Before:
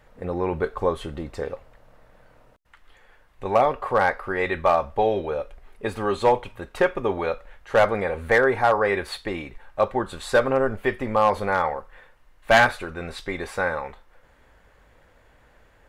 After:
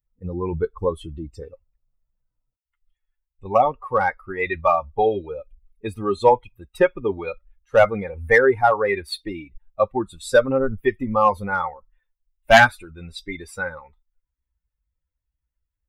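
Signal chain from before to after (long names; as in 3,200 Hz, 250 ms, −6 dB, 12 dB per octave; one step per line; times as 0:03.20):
spectral dynamics exaggerated over time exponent 2
level +7 dB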